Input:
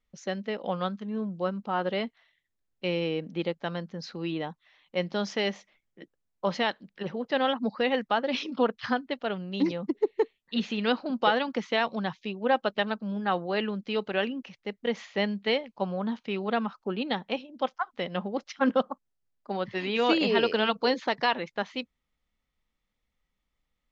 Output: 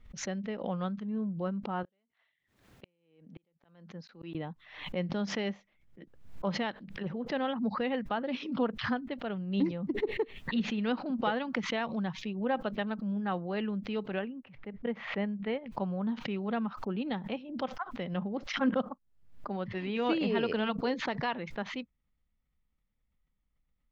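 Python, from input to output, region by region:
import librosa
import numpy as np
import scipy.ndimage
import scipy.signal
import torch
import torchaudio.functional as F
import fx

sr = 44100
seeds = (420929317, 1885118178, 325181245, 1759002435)

y = fx.chain(x, sr, fx.highpass(hz=310.0, slope=6),
    fx.gate_flip(shuts_db=-30.0, range_db=-42), at=(1.83, 4.35))
y = fx.chain(y, sr, fx.lowpass(hz=2300.0, slope=12),
    fx.upward_expand(threshold_db=-39.0, expansion=1.5), at=(14.19, 15.66))
y = fx.bass_treble(y, sr, bass_db=10, treble_db=-11)
y = fx.pre_swell(y, sr, db_per_s=82.0)
y = y * 10.0 ** (-7.5 / 20.0)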